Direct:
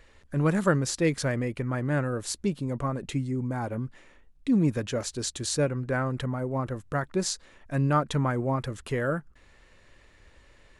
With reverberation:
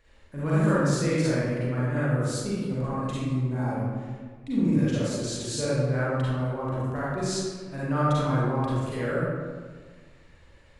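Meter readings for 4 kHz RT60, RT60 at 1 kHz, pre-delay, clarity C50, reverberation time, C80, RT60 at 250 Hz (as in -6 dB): 0.95 s, 1.5 s, 36 ms, -5.5 dB, 1.6 s, -1.5 dB, 1.9 s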